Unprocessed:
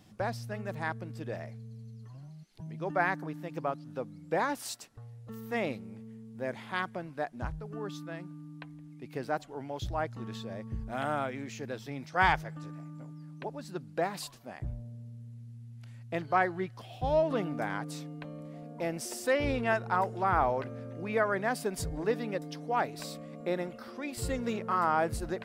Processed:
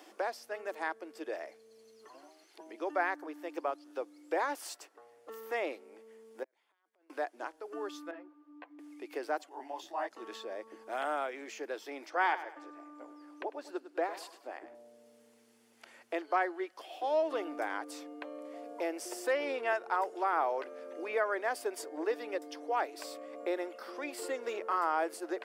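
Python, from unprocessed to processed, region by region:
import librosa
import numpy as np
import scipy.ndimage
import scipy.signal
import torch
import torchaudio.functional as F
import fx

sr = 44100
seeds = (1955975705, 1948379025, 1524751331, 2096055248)

y = fx.chain(x, sr, fx.low_shelf(hz=240.0, db=-3.5),
    fx.over_compress(threshold_db=-43.0, ratio=-1.0),
    fx.gate_flip(shuts_db=-38.0, range_db=-38), at=(6.43, 7.1))
y = fx.chain(y, sr, fx.highpass(hz=260.0, slope=12),
    fx.spacing_loss(db_at_10k=35),
    fx.ensemble(), at=(8.11, 8.79))
y = fx.chain(y, sr, fx.comb(ms=1.1, depth=0.56),
    fx.detune_double(cents=56), at=(9.49, 10.11))
y = fx.chain(y, sr, fx.high_shelf(hz=4000.0, db=-9.0),
    fx.echo_feedback(ms=100, feedback_pct=31, wet_db=-14), at=(12.1, 14.75))
y = scipy.signal.sosfilt(scipy.signal.ellip(4, 1.0, 50, 320.0, 'highpass', fs=sr, output='sos'), y)
y = fx.notch(y, sr, hz=3900.0, q=15.0)
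y = fx.band_squash(y, sr, depth_pct=40)
y = y * librosa.db_to_amplitude(-1.0)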